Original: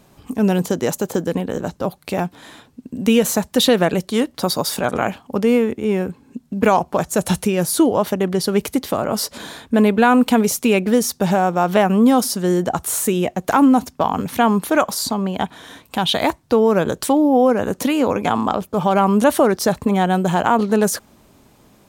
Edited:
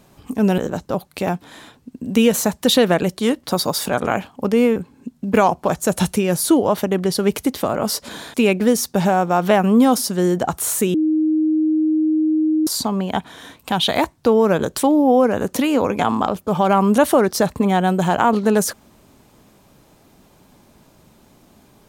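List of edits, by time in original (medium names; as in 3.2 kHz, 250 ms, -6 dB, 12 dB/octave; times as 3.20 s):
0.58–1.49 s: delete
5.67–6.05 s: delete
9.63–10.60 s: delete
13.20–14.93 s: bleep 312 Hz -14 dBFS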